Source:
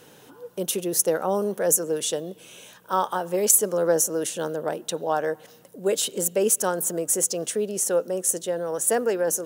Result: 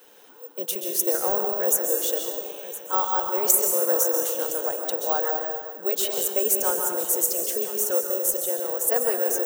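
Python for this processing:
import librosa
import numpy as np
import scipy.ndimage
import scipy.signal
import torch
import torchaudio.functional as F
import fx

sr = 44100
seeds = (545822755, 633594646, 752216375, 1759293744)

p1 = scipy.signal.sosfilt(scipy.signal.butter(2, 390.0, 'highpass', fs=sr, output='sos'), x)
p2 = p1 + fx.echo_single(p1, sr, ms=1014, db=-15.0, dry=0)
p3 = fx.rev_plate(p2, sr, seeds[0], rt60_s=1.5, hf_ratio=0.65, predelay_ms=115, drr_db=2.5)
p4 = (np.kron(scipy.signal.resample_poly(p3, 1, 2), np.eye(2)[0]) * 2)[:len(p3)]
y = p4 * librosa.db_to_amplitude(-3.0)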